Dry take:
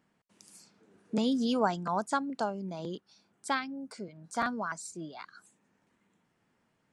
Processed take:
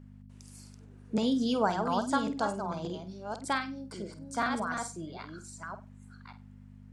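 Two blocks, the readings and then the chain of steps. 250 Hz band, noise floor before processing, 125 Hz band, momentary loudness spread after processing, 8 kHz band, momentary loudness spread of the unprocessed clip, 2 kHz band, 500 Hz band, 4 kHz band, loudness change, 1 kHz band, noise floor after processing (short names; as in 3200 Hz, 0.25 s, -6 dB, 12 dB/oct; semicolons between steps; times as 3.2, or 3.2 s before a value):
+1.0 dB, -75 dBFS, +2.5 dB, 23 LU, +1.5 dB, 16 LU, +1.5 dB, +1.5 dB, +1.5 dB, +0.5 dB, +1.5 dB, -51 dBFS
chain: reverse delay 0.575 s, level -6 dB; buzz 50 Hz, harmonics 5, -51 dBFS -2 dB/oct; flutter echo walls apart 8.4 m, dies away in 0.27 s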